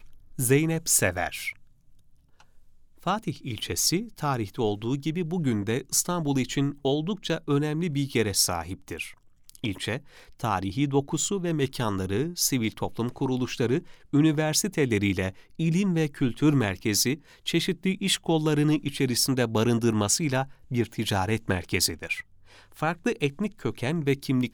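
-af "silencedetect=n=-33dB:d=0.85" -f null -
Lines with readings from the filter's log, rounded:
silence_start: 1.51
silence_end: 3.07 | silence_duration: 1.55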